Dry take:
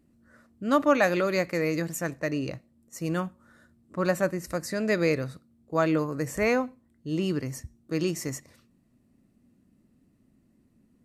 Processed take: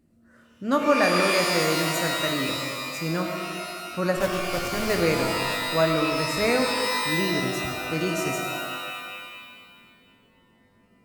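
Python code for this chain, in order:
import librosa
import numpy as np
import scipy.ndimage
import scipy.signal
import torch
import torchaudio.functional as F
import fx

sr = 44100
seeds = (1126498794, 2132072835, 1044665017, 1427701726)

y = fx.delta_hold(x, sr, step_db=-26.0, at=(4.16, 5.0), fade=0.02)
y = fx.rev_shimmer(y, sr, seeds[0], rt60_s=1.9, semitones=12, shimmer_db=-2, drr_db=2.5)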